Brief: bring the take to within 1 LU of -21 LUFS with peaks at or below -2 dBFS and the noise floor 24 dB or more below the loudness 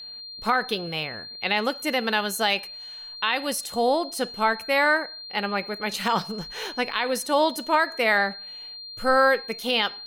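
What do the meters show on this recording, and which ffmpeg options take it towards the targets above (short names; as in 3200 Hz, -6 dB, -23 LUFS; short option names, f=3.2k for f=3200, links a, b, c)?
steady tone 4200 Hz; tone level -37 dBFS; loudness -24.5 LUFS; peak -10.5 dBFS; loudness target -21.0 LUFS
-> -af "bandreject=f=4.2k:w=30"
-af "volume=3.5dB"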